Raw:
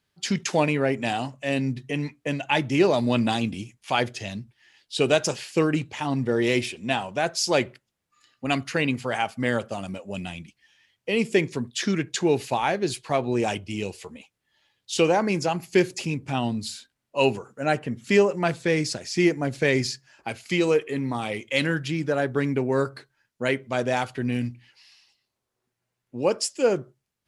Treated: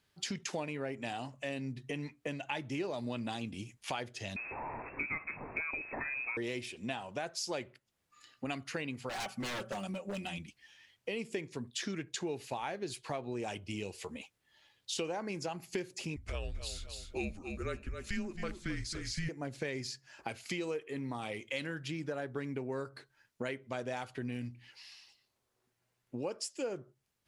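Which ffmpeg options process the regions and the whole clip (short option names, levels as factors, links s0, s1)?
-filter_complex "[0:a]asettb=1/sr,asplit=3[s0][s1][s2];[s0]atrim=end=4.364[s3];[s1]atrim=start=4.36:end=6.37,asetpts=PTS-STARTPTS,afade=t=in:d=0.004:c=qsin,afade=t=out:st=2.006:d=0.004:c=qsin,aeval=exprs='val(0)+0.5*0.0251*sgn(val(0))':c=same,lowpass=f=2300:t=q:w=0.5098,lowpass=f=2300:t=q:w=0.6013,lowpass=f=2300:t=q:w=0.9,lowpass=f=2300:t=q:w=2.563,afreqshift=-2700,tiltshelf=f=940:g=7[s4];[s2]atrim=start=6.366[s5];[s3][s4]acrossfade=d=0.004:c1=hsin:c2=qsin[s6];[s6][s5]acrossfade=d=0.004:c1=qsin:c2=hsin,asettb=1/sr,asplit=3[s7][s8][s9];[s7]atrim=end=9.094[s10];[s8]atrim=start=9.09:end=10.38,asetpts=PTS-STARTPTS,afade=t=in:d=0.004:c=qsin,afade=t=out:st=1.286:d=0.004:c=qsin,bandreject=f=60:t=h:w=6,bandreject=f=120:t=h:w=6,bandreject=f=180:t=h:w=6,aecho=1:1:5.3:0.81,atrim=end_sample=56889,aeval=exprs='0.0631*(abs(mod(val(0)/0.0631+3,4)-2)-1)':c=same[s11];[s9]atrim=start=10.376[s12];[s10][s11]acrossfade=d=0.004:c1=hsin:c2=qsin[s13];[s13][s12]acrossfade=d=0.004:c1=qsin:c2=hsin,asettb=1/sr,asplit=3[s14][s15][s16];[s14]atrim=end=16.164[s17];[s15]atrim=start=16.16:end=19.29,asetpts=PTS-STARTPTS,afade=t=in:d=0.004:c=qsin,afade=t=out:st=3.126:d=0.004:c=qsin,equalizer=f=1000:w=2.6:g=-7.5,afreqshift=-190,aecho=1:1:267|534|801:0.251|0.0653|0.017,atrim=end_sample=138033[s18];[s16]atrim=start=19.286[s19];[s17][s18]acrossfade=d=0.004:c1=hsin:c2=qsin[s20];[s20][s19]acrossfade=d=0.004:c1=qsin:c2=hsin,equalizer=f=180:w=1.5:g=-2.5,acompressor=threshold=0.0112:ratio=4,volume=1.12"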